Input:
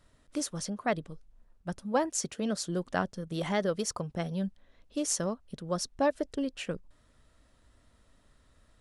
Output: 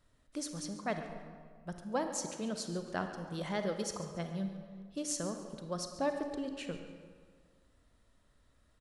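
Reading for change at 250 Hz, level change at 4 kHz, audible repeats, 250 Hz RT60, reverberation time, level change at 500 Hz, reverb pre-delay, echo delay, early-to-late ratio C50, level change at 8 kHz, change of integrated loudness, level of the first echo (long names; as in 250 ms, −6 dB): −5.0 dB, −5.0 dB, 1, 1.7 s, 1.8 s, −5.5 dB, 33 ms, 140 ms, 6.5 dB, −6.0 dB, −5.5 dB, −15.5 dB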